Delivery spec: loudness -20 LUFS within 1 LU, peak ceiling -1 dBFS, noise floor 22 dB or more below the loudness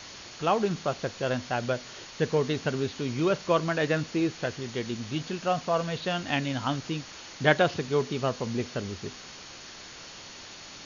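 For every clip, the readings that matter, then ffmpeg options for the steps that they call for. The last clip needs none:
steady tone 4400 Hz; tone level -53 dBFS; noise floor -45 dBFS; noise floor target -51 dBFS; loudness -29.0 LUFS; peak -7.0 dBFS; loudness target -20.0 LUFS
-> -af "bandreject=f=4.4k:w=30"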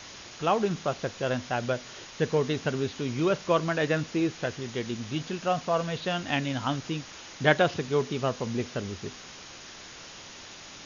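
steady tone none; noise floor -46 dBFS; noise floor target -51 dBFS
-> -af "afftdn=nr=6:nf=-46"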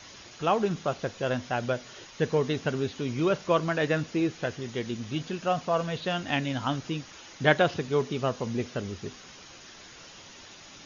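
noise floor -49 dBFS; noise floor target -51 dBFS
-> -af "afftdn=nr=6:nf=-49"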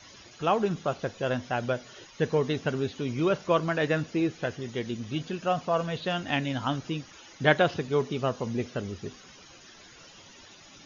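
noise floor -52 dBFS; loudness -29.0 LUFS; peak -7.0 dBFS; loudness target -20.0 LUFS
-> -af "volume=9dB,alimiter=limit=-1dB:level=0:latency=1"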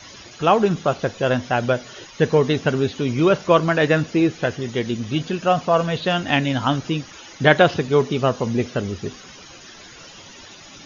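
loudness -20.0 LUFS; peak -1.0 dBFS; noise floor -43 dBFS

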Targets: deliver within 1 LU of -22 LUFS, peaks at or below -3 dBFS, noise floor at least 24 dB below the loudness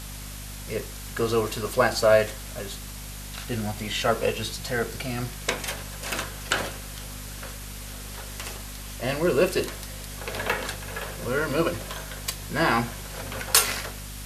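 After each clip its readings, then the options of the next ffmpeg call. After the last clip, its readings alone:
hum 50 Hz; harmonics up to 250 Hz; hum level -37 dBFS; noise floor -38 dBFS; noise floor target -52 dBFS; loudness -27.5 LUFS; peak -2.5 dBFS; loudness target -22.0 LUFS
-> -af "bandreject=f=50:t=h:w=6,bandreject=f=100:t=h:w=6,bandreject=f=150:t=h:w=6,bandreject=f=200:t=h:w=6,bandreject=f=250:t=h:w=6"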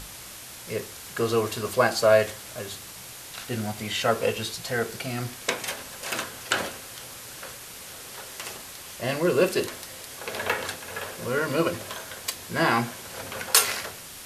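hum none; noise floor -42 dBFS; noise floor target -51 dBFS
-> -af "afftdn=nr=9:nf=-42"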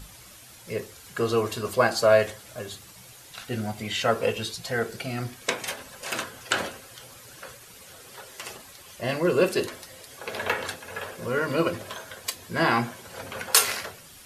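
noise floor -48 dBFS; noise floor target -51 dBFS
-> -af "afftdn=nr=6:nf=-48"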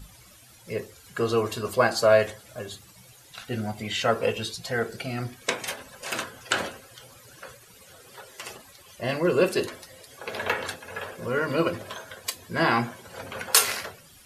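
noise floor -52 dBFS; loudness -26.5 LUFS; peak -2.5 dBFS; loudness target -22.0 LUFS
-> -af "volume=4.5dB,alimiter=limit=-3dB:level=0:latency=1"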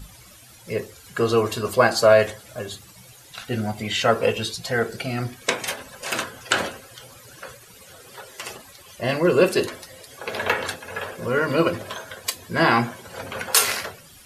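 loudness -22.5 LUFS; peak -3.0 dBFS; noise floor -48 dBFS

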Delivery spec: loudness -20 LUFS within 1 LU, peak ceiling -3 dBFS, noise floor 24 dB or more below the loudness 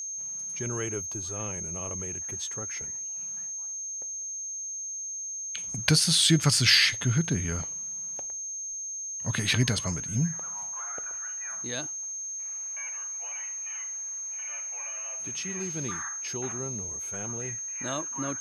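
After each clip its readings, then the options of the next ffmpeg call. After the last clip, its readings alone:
steady tone 6400 Hz; tone level -33 dBFS; loudness -28.5 LUFS; peak -6.0 dBFS; loudness target -20.0 LUFS
-> -af "bandreject=f=6.4k:w=30"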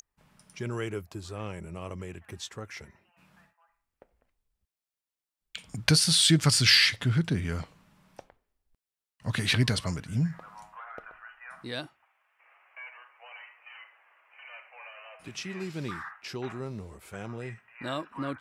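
steady tone none; loudness -27.0 LUFS; peak -5.5 dBFS; loudness target -20.0 LUFS
-> -af "volume=7dB,alimiter=limit=-3dB:level=0:latency=1"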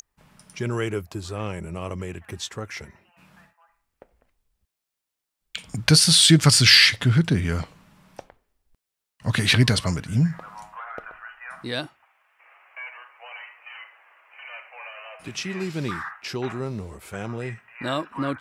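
loudness -20.5 LUFS; peak -3.0 dBFS; noise floor -84 dBFS

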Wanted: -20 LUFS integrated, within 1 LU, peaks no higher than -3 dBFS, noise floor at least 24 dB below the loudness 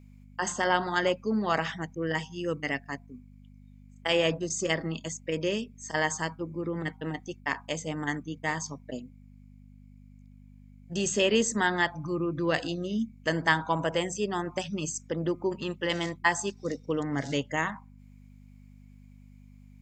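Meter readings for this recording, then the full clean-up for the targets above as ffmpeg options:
hum 50 Hz; harmonics up to 250 Hz; hum level -49 dBFS; loudness -30.0 LUFS; peak -8.0 dBFS; loudness target -20.0 LUFS
-> -af "bandreject=f=50:t=h:w=4,bandreject=f=100:t=h:w=4,bandreject=f=150:t=h:w=4,bandreject=f=200:t=h:w=4,bandreject=f=250:t=h:w=4"
-af "volume=10dB,alimiter=limit=-3dB:level=0:latency=1"

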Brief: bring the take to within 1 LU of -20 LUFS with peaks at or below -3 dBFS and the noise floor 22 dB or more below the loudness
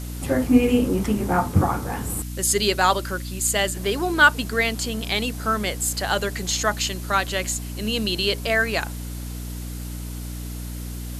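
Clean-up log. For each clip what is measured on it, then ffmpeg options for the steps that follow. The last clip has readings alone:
hum 60 Hz; harmonics up to 300 Hz; hum level -30 dBFS; noise floor -32 dBFS; noise floor target -44 dBFS; loudness -22.0 LUFS; peak -2.5 dBFS; loudness target -20.0 LUFS
-> -af "bandreject=f=60:t=h:w=6,bandreject=f=120:t=h:w=6,bandreject=f=180:t=h:w=6,bandreject=f=240:t=h:w=6,bandreject=f=300:t=h:w=6"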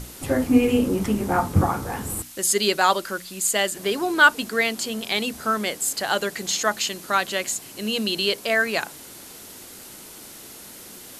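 hum none; noise floor -42 dBFS; noise floor target -45 dBFS
-> -af "afftdn=nr=6:nf=-42"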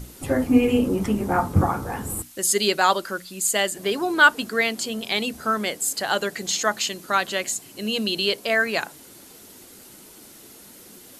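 noise floor -47 dBFS; loudness -22.5 LUFS; peak -2.5 dBFS; loudness target -20.0 LUFS
-> -af "volume=2.5dB,alimiter=limit=-3dB:level=0:latency=1"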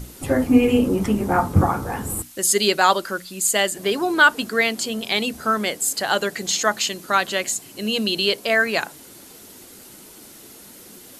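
loudness -20.0 LUFS; peak -3.0 dBFS; noise floor -44 dBFS

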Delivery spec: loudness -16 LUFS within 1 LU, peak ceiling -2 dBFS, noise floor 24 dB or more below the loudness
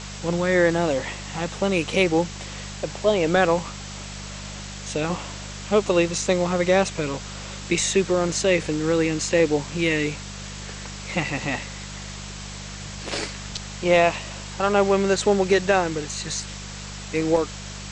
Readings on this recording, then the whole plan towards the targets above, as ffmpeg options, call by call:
hum 50 Hz; harmonics up to 200 Hz; hum level -35 dBFS; noise floor -36 dBFS; noise floor target -47 dBFS; loudness -23.0 LUFS; peak -5.0 dBFS; loudness target -16.0 LUFS
-> -af "bandreject=f=50:t=h:w=4,bandreject=f=100:t=h:w=4,bandreject=f=150:t=h:w=4,bandreject=f=200:t=h:w=4"
-af "afftdn=nr=11:nf=-36"
-af "volume=7dB,alimiter=limit=-2dB:level=0:latency=1"

